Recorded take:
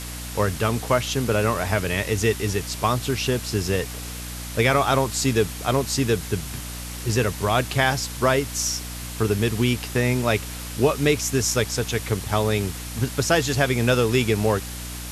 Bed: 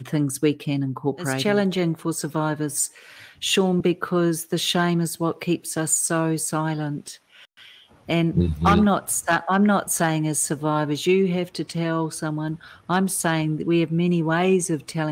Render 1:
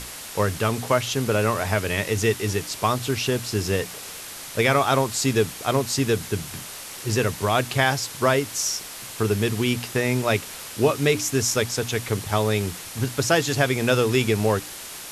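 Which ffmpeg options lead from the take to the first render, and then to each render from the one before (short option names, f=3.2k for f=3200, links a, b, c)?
-af "bandreject=f=60:t=h:w=6,bandreject=f=120:t=h:w=6,bandreject=f=180:t=h:w=6,bandreject=f=240:t=h:w=6,bandreject=f=300:t=h:w=6"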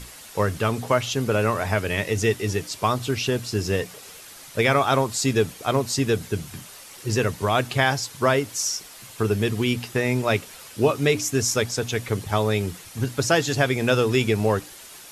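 -af "afftdn=nr=8:nf=-37"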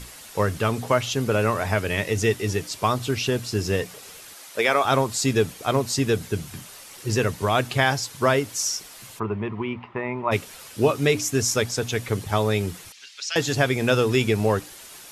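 -filter_complex "[0:a]asettb=1/sr,asplit=3[a][b][c];[a]atrim=end=4.344[d];[b]atrim=start=4.34:end=4.85,asetpts=PTS-STARTPTS,afade=t=in:d=0.004:c=qsin,afade=t=out:st=0.506:d=0.004:c=qsin,highpass=350[e];[c]atrim=start=4.846[f];[d][e]acrossfade=d=0.004:c1=hsin:c2=qsin[g];[g][f]acrossfade=d=0.004:c1=qsin:c2=hsin,asplit=3[h][i][j];[h]afade=t=out:st=9.18:d=0.02[k];[i]highpass=110,equalizer=f=130:t=q:w=4:g=-10,equalizer=f=270:t=q:w=4:g=-9,equalizer=f=470:t=q:w=4:g=-9,equalizer=f=690:t=q:w=4:g=-3,equalizer=f=1k:t=q:w=4:g=10,equalizer=f=1.6k:t=q:w=4:g=-10,lowpass=f=2.1k:w=0.5412,lowpass=f=2.1k:w=1.3066,afade=t=in:st=9.18:d=0.02,afade=t=out:st=10.31:d=0.02[l];[j]afade=t=in:st=10.31:d=0.02[m];[k][l][m]amix=inputs=3:normalize=0,asettb=1/sr,asplit=3[n][o][p];[n]atrim=end=12.924[q];[o]atrim=start=12.92:end=13.36,asetpts=PTS-STARTPTS,afade=t=in:d=0.004:c=qsin,afade=t=out:st=0.436:d=0.004:c=qsin,asuperpass=centerf=3700:order=4:qfactor=0.99[r];[p]atrim=start=13.356[s];[q][r]acrossfade=d=0.004:c1=hsin:c2=qsin[t];[t][s]acrossfade=d=0.004:c1=qsin:c2=hsin"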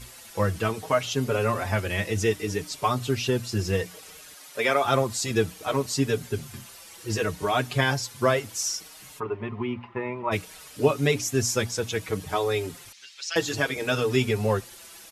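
-filter_complex "[0:a]asplit=2[a][b];[b]adelay=5.3,afreqshift=-0.62[c];[a][c]amix=inputs=2:normalize=1"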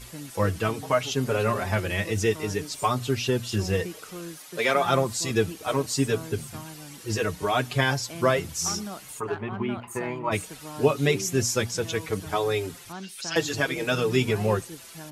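-filter_complex "[1:a]volume=-18dB[a];[0:a][a]amix=inputs=2:normalize=0"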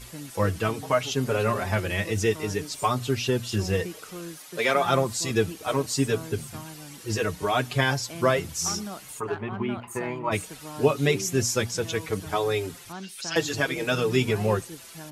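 -af anull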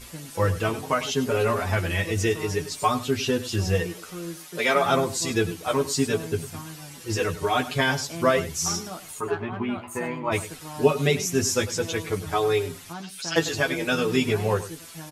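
-filter_complex "[0:a]asplit=2[a][b];[b]adelay=12,volume=-4.5dB[c];[a][c]amix=inputs=2:normalize=0,aecho=1:1:100:0.178"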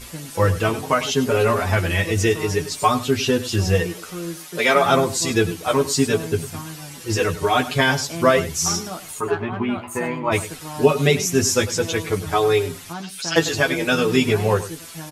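-af "volume=5dB,alimiter=limit=-2dB:level=0:latency=1"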